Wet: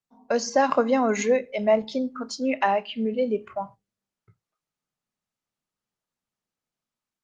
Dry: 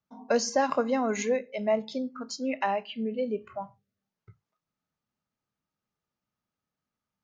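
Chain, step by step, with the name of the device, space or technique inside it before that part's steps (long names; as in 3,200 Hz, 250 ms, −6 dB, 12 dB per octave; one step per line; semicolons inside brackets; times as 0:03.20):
video call (high-pass filter 120 Hz 6 dB per octave; automatic gain control gain up to 6 dB; noise gate −42 dBFS, range −8 dB; Opus 24 kbit/s 48,000 Hz)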